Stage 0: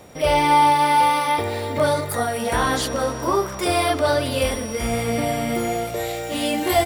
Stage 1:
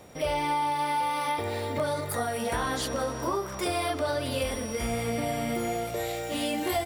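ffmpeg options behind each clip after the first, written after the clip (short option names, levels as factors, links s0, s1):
-af "acompressor=threshold=0.1:ratio=6,volume=0.562"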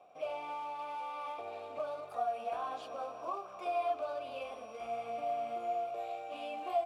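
-filter_complex "[0:a]acrusher=bits=3:mode=log:mix=0:aa=0.000001,asplit=3[s0][s1][s2];[s0]bandpass=f=730:t=q:w=8,volume=1[s3];[s1]bandpass=f=1090:t=q:w=8,volume=0.501[s4];[s2]bandpass=f=2440:t=q:w=8,volume=0.355[s5];[s3][s4][s5]amix=inputs=3:normalize=0"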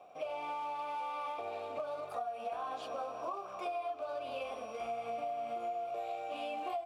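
-af "acompressor=threshold=0.0112:ratio=12,volume=1.58"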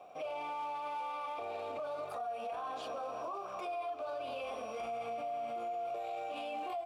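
-af "alimiter=level_in=3.76:limit=0.0631:level=0:latency=1:release=12,volume=0.266,volume=1.33"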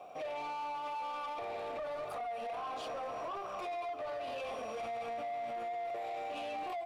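-af "asoftclip=type=tanh:threshold=0.0112,volume=1.5"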